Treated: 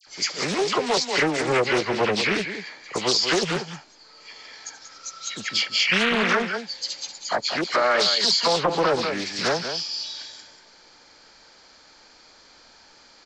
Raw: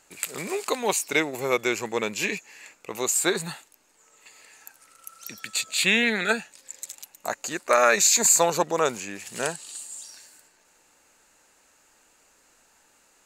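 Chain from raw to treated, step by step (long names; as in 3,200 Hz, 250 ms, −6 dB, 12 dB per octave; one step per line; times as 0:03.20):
hearing-aid frequency compression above 1,800 Hz 1.5 to 1
in parallel at +1 dB: downward compressor, threshold −31 dBFS, peak gain reduction 15.5 dB
on the sum: high-shelf EQ 6,600 Hz +4 dB
all-pass dispersion lows, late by 73 ms, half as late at 1,700 Hz
on a send: single-tap delay 187 ms −9 dB
on the sum: brickwall limiter −13 dBFS, peak gain reduction 9.5 dB
highs frequency-modulated by the lows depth 0.46 ms
level +2 dB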